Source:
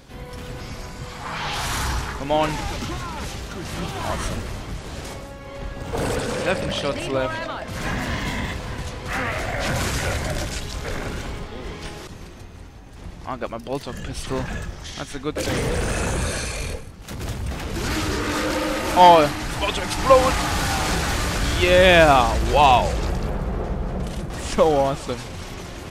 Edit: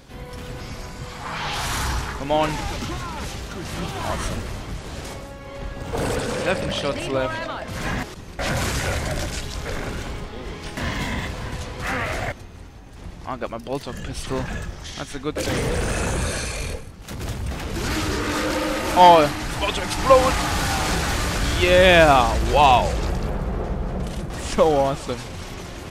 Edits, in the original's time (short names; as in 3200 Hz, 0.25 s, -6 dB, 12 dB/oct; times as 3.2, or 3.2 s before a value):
8.03–9.58 swap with 11.96–12.32